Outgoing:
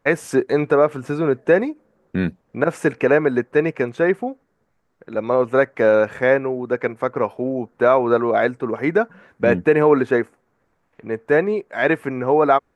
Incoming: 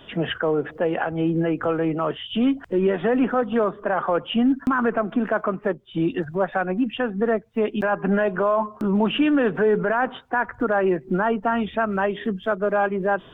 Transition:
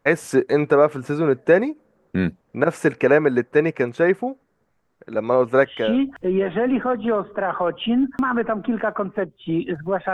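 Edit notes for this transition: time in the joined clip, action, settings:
outgoing
0:05.77: continue with incoming from 0:02.25, crossfade 0.42 s equal-power

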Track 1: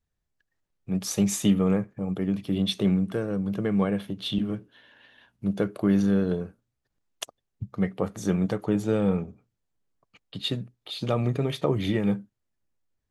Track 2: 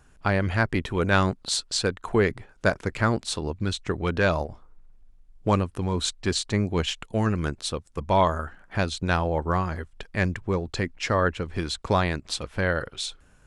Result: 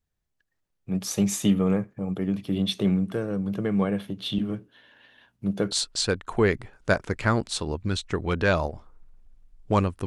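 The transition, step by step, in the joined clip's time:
track 1
0:05.71: continue with track 2 from 0:01.47

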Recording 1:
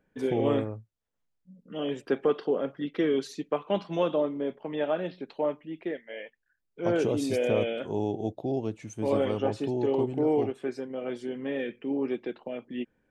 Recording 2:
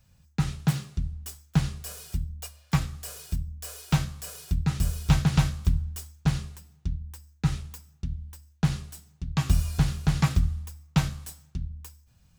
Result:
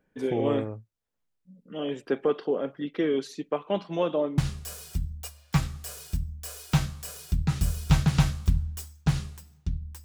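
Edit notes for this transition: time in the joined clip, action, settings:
recording 1
0:04.38: continue with recording 2 from 0:01.57

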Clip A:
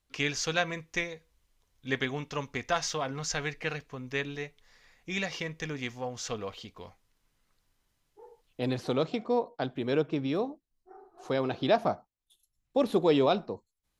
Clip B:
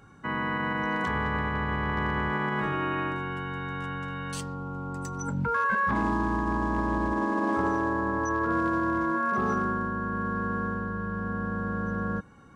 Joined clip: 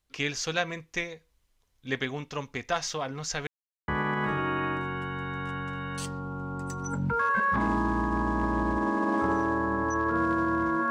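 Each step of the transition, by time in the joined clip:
clip A
0:03.47–0:03.88: silence
0:03.88: continue with clip B from 0:02.23

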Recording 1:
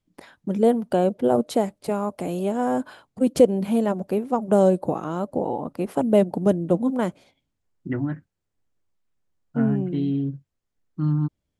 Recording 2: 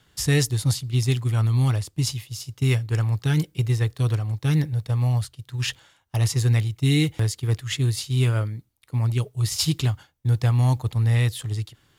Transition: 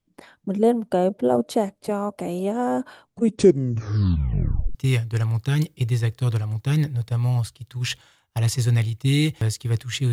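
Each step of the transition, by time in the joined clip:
recording 1
0:03.07: tape stop 1.68 s
0:04.75: continue with recording 2 from 0:02.53

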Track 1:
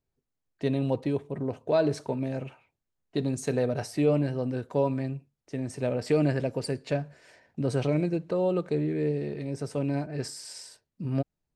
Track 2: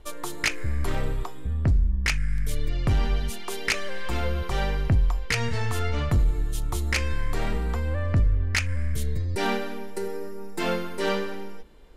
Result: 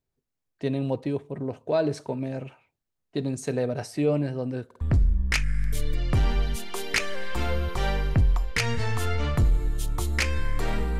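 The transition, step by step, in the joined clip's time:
track 1
0:04.66: stutter in place 0.05 s, 3 plays
0:04.81: continue with track 2 from 0:01.55

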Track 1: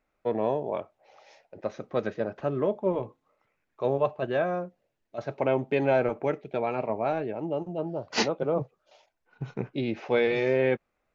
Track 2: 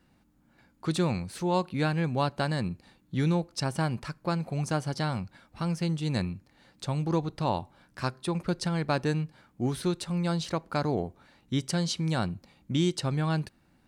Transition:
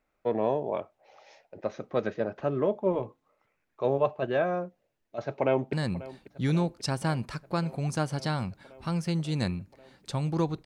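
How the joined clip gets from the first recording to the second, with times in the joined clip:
track 1
0:05.22–0:05.73: delay throw 540 ms, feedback 80%, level −17.5 dB
0:05.73: continue with track 2 from 0:02.47

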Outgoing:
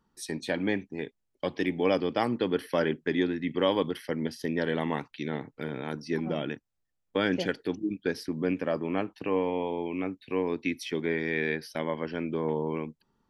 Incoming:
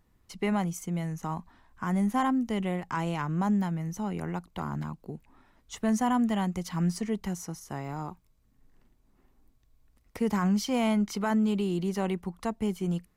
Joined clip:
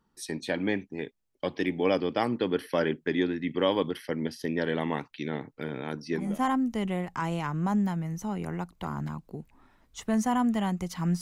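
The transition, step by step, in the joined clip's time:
outgoing
0:06.27: continue with incoming from 0:02.02, crossfade 0.30 s linear

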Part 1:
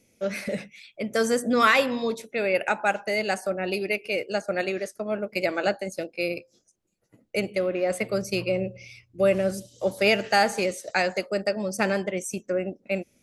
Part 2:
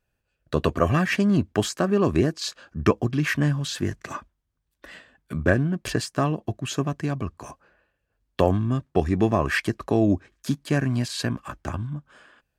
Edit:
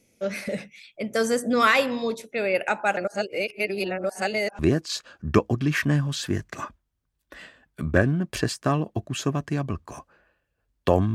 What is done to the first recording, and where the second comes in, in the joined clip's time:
part 1
0:02.97–0:04.59: reverse
0:04.59: continue with part 2 from 0:02.11

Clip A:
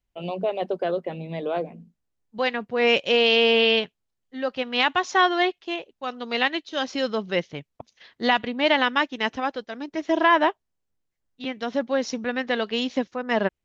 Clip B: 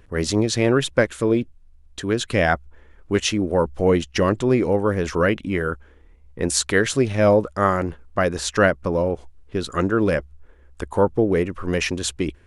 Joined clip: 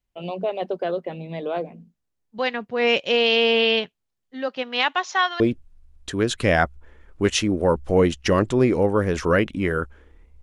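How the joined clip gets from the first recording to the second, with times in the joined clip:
clip A
0:04.47–0:05.40: high-pass filter 150 Hz → 1,200 Hz
0:05.40: continue with clip B from 0:01.30

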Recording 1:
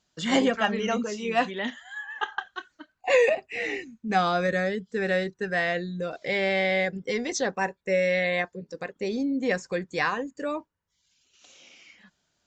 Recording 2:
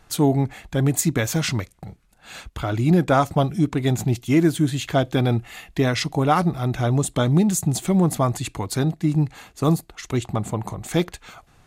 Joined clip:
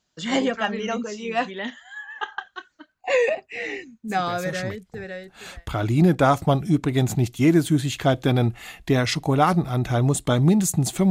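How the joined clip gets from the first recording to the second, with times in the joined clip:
recording 1
0:04.85: continue with recording 2 from 0:01.74, crossfade 1.64 s linear

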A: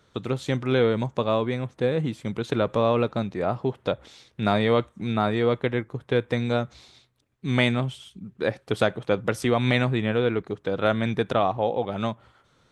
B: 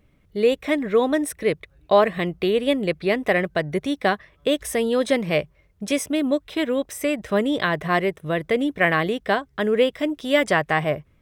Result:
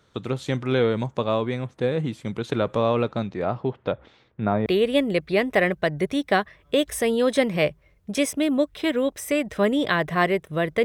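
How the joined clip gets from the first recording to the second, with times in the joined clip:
A
0:03.02–0:04.66: low-pass filter 9,200 Hz → 1,100 Hz
0:04.66: continue with B from 0:02.39

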